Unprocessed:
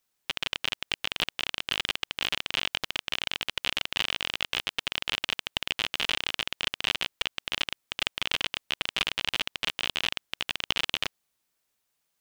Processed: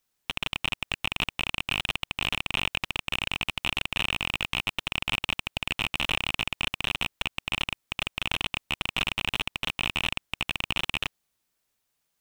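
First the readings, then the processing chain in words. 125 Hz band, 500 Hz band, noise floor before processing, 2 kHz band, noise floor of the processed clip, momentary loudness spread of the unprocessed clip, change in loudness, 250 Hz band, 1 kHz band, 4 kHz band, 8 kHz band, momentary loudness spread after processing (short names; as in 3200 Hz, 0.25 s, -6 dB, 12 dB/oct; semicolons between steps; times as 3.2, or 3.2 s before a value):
+9.5 dB, +0.5 dB, -79 dBFS, +2.5 dB, -78 dBFS, 4 LU, +0.5 dB, +6.0 dB, +3.0 dB, -1.0 dB, -1.0 dB, 3 LU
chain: rattling part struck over -42 dBFS, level -9 dBFS; low shelf 180 Hz +5 dB; slew limiter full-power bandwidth 300 Hz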